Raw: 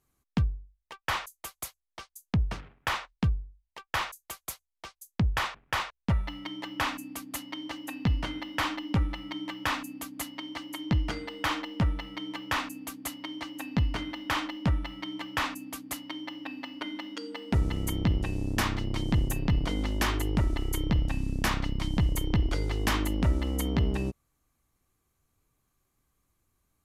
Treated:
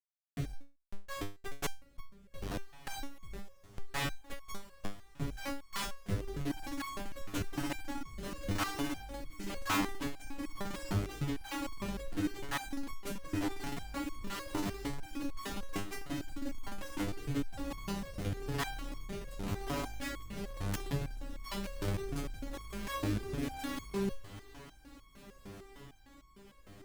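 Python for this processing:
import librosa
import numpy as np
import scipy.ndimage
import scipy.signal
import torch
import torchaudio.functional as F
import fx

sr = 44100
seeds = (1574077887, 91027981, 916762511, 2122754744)

p1 = fx.high_shelf(x, sr, hz=9600.0, db=-3.5)
p2 = fx.hum_notches(p1, sr, base_hz=60, count=8)
p3 = p2 + 0.67 * np.pad(p2, (int(7.1 * sr / 1000.0), 0))[:len(p2)]
p4 = fx.schmitt(p3, sr, flips_db=-32.5)
p5 = fx.leveller(p4, sr, passes=1)
p6 = fx.rotary(p5, sr, hz=1.0)
p7 = p6 + fx.echo_diffused(p6, sr, ms=1655, feedback_pct=56, wet_db=-16, dry=0)
p8 = fx.resonator_held(p7, sr, hz=6.6, low_hz=100.0, high_hz=1100.0)
y = F.gain(torch.from_numpy(p8), 8.0).numpy()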